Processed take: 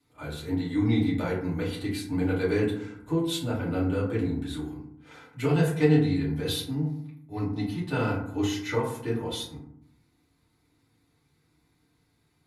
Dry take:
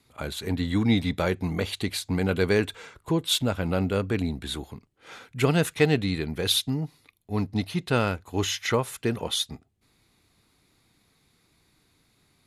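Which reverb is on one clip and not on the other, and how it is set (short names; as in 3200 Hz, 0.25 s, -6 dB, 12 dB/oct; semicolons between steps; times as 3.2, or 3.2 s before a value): FDN reverb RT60 0.69 s, low-frequency decay 1.5×, high-frequency decay 0.4×, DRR -8 dB; gain -13.5 dB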